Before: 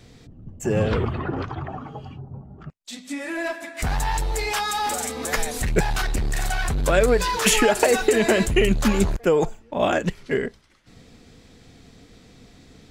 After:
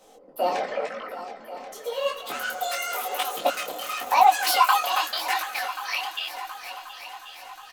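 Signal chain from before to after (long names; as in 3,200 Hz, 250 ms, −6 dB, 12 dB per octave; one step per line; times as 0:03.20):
high-pass filter 58 Hz 24 dB per octave
comb filter 6.5 ms, depth 45%
change of speed 1.67×
high-pass filter sweep 550 Hz → 2,900 Hz, 0:03.66–0:06.15
background noise brown −68 dBFS
on a send: echo machine with several playback heads 361 ms, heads second and third, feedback 53%, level −14.5 dB
on the sum: micro pitch shift up and down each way 32 cents
level −1.5 dB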